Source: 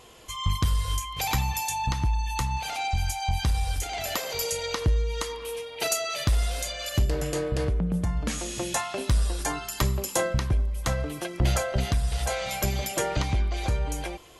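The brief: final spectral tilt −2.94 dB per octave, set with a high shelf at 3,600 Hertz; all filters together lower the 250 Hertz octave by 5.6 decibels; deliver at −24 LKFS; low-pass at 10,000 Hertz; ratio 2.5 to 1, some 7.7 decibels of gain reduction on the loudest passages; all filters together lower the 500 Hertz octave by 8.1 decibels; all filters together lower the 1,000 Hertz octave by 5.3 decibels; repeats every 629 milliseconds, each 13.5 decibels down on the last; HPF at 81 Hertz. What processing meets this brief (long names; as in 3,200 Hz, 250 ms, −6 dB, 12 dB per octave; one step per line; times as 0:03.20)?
high-pass filter 81 Hz
low-pass filter 10,000 Hz
parametric band 250 Hz −7 dB
parametric band 500 Hz −7 dB
parametric band 1,000 Hz −4.5 dB
high-shelf EQ 3,600 Hz +7.5 dB
downward compressor 2.5 to 1, threshold −32 dBFS
repeating echo 629 ms, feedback 21%, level −13.5 dB
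level +9 dB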